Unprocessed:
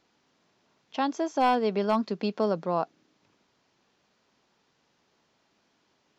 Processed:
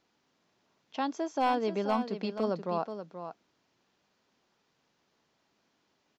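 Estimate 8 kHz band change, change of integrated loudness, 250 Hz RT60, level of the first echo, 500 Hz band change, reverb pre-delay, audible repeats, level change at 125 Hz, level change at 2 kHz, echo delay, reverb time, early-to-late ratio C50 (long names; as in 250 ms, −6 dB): can't be measured, −4.0 dB, no reverb audible, −9.5 dB, −4.0 dB, no reverb audible, 1, −4.0 dB, −4.0 dB, 480 ms, no reverb audible, no reverb audible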